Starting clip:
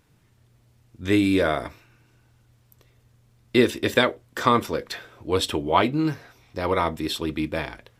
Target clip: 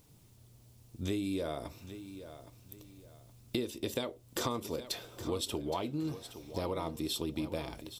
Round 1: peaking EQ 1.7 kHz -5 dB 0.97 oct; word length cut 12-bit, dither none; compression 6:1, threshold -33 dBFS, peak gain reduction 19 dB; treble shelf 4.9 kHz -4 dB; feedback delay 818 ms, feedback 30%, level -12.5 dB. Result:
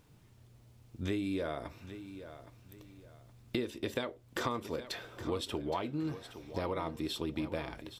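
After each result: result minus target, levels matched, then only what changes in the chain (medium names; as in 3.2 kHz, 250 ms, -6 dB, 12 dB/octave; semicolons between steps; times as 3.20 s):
8 kHz band -7.0 dB; 2 kHz band +4.5 dB
change: treble shelf 4.9 kHz +6 dB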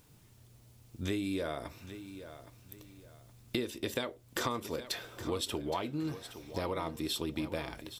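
2 kHz band +5.0 dB
change: peaking EQ 1.7 kHz -14 dB 0.97 oct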